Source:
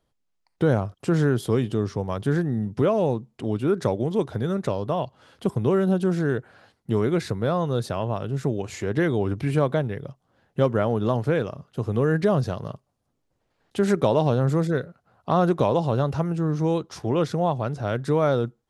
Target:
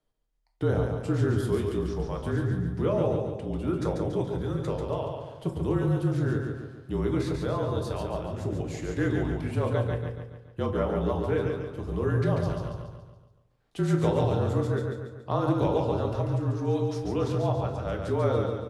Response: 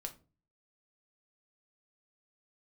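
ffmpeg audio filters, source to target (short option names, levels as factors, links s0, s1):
-filter_complex "[0:a]aecho=1:1:141|282|423|564|705|846:0.596|0.286|0.137|0.0659|0.0316|0.0152,afreqshift=-37[s0];[1:a]atrim=start_sample=2205,asetrate=37926,aresample=44100[s1];[s0][s1]afir=irnorm=-1:irlink=0,volume=0.596"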